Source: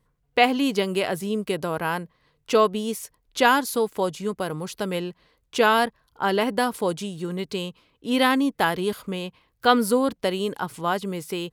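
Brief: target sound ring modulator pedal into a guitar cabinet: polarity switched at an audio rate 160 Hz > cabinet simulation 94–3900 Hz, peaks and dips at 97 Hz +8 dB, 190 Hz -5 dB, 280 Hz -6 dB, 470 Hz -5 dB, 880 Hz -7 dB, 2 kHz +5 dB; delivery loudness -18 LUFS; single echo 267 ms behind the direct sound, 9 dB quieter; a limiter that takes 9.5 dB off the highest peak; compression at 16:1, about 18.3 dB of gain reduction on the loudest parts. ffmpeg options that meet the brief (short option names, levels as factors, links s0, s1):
-af "acompressor=threshold=0.0282:ratio=16,alimiter=level_in=1.5:limit=0.0631:level=0:latency=1,volume=0.668,aecho=1:1:267:0.355,aeval=exprs='val(0)*sgn(sin(2*PI*160*n/s))':c=same,highpass=94,equalizer=f=97:t=q:w=4:g=8,equalizer=f=190:t=q:w=4:g=-5,equalizer=f=280:t=q:w=4:g=-6,equalizer=f=470:t=q:w=4:g=-5,equalizer=f=880:t=q:w=4:g=-7,equalizer=f=2000:t=q:w=4:g=5,lowpass=f=3900:w=0.5412,lowpass=f=3900:w=1.3066,volume=12.6"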